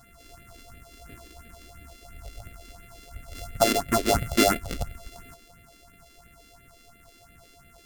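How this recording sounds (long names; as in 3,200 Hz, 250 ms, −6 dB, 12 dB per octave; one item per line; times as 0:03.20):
a buzz of ramps at a fixed pitch in blocks of 64 samples
phaser sweep stages 4, 2.9 Hz, lowest notch 120–1,000 Hz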